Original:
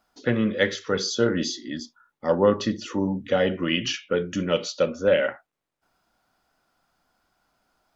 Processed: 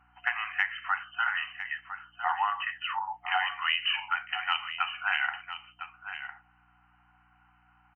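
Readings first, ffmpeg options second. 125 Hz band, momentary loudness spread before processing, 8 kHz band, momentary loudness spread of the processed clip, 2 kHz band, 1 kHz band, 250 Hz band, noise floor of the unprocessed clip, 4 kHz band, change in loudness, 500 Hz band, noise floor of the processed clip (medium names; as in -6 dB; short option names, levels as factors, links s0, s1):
under -30 dB, 8 LU, no reading, 13 LU, +2.5 dB, +4.0 dB, under -40 dB, -83 dBFS, -2.0 dB, -6.0 dB, under -30 dB, -65 dBFS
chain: -filter_complex "[0:a]afftfilt=real='re*between(b*sr/4096,720,3100)':imag='im*between(b*sr/4096,720,3100)':win_size=4096:overlap=0.75,acompressor=threshold=0.0282:ratio=12,aeval=exprs='val(0)+0.0002*(sin(2*PI*60*n/s)+sin(2*PI*2*60*n/s)/2+sin(2*PI*3*60*n/s)/3+sin(2*PI*4*60*n/s)/4+sin(2*PI*5*60*n/s)/5)':c=same,asplit=2[s0][s1];[s1]aecho=0:1:1006:0.282[s2];[s0][s2]amix=inputs=2:normalize=0,volume=2.37"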